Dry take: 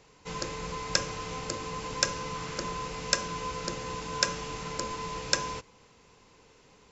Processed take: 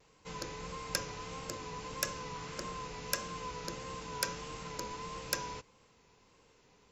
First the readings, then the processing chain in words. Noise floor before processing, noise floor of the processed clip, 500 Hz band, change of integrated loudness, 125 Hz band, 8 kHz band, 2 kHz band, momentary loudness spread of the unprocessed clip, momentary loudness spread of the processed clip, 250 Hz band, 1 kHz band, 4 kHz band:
-60 dBFS, -66 dBFS, -6.5 dB, -7.5 dB, -6.5 dB, n/a, -7.0 dB, 7 LU, 6 LU, -6.5 dB, -6.5 dB, -8.5 dB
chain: self-modulated delay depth 0.052 ms; vibrato 1.6 Hz 53 cents; gain -6.5 dB

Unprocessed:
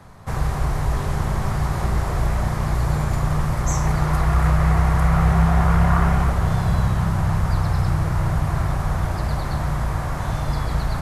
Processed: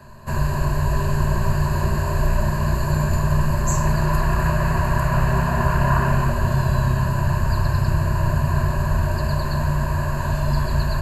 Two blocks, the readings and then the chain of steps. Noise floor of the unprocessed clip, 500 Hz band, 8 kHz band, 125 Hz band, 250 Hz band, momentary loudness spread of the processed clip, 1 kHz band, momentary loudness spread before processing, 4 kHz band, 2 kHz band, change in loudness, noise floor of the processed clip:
-26 dBFS, +3.0 dB, +1.5 dB, +0.5 dB, 0.0 dB, 3 LU, +1.0 dB, 7 LU, +1.5 dB, +2.5 dB, 0.0 dB, -24 dBFS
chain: ripple EQ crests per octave 1.4, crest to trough 16 dB; gain -1.5 dB

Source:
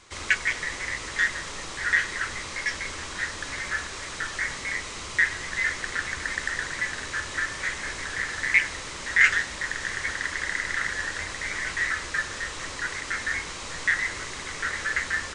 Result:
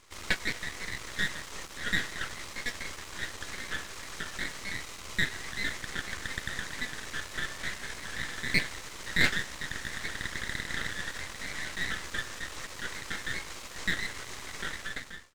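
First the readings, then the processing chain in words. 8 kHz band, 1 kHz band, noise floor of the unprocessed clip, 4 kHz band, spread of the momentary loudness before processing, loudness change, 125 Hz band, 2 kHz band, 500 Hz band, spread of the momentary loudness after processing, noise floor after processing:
-6.0 dB, -7.5 dB, -37 dBFS, -2.0 dB, 9 LU, -7.5 dB, 0.0 dB, -8.5 dB, -4.0 dB, 9 LU, -45 dBFS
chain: ending faded out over 0.69 s; half-wave rectifier; gain -2.5 dB

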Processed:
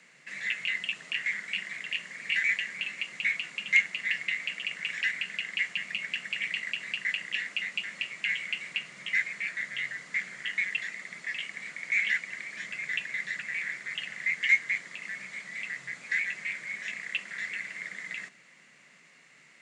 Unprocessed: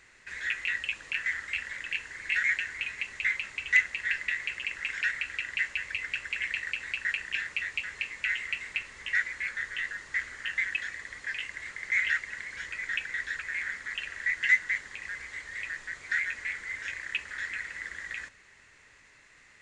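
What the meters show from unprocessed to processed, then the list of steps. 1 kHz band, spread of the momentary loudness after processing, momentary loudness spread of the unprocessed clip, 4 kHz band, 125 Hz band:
-3.5 dB, 11 LU, 11 LU, +4.5 dB, n/a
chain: frequency shift +130 Hz

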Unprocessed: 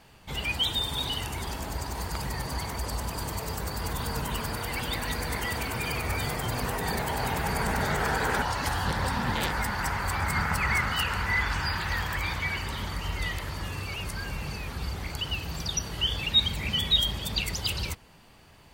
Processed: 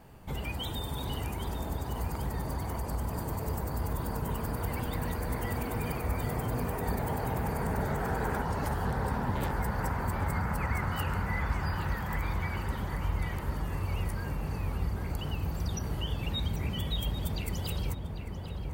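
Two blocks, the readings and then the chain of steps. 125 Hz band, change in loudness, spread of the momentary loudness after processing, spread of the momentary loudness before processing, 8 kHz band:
+1.0 dB, -4.5 dB, 4 LU, 9 LU, -10.0 dB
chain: bell 4000 Hz -14.5 dB 2.8 oct; compressor 2:1, threshold -39 dBFS, peak gain reduction 8 dB; darkening echo 0.794 s, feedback 66%, low-pass 1900 Hz, level -5 dB; gain +4.5 dB

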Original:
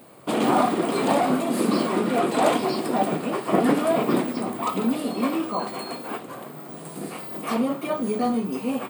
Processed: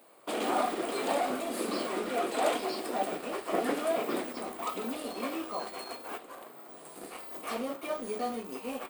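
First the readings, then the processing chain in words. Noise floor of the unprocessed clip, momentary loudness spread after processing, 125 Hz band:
-39 dBFS, 12 LU, -20.0 dB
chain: HPF 400 Hz 12 dB/oct; in parallel at -11.5 dB: bit-crush 5-bit; on the sum: dynamic EQ 990 Hz, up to -5 dB, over -36 dBFS, Q 2.6; gain -8 dB

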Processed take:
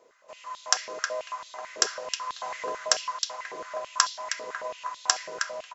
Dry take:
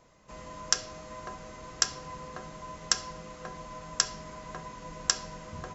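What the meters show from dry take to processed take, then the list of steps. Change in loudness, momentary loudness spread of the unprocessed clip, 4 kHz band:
+3.5 dB, 14 LU, +3.0 dB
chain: AGC gain up to 11.5 dB; outdoor echo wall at 54 m, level -6 dB; stepped high-pass 9.1 Hz 430–3700 Hz; gain -2.5 dB

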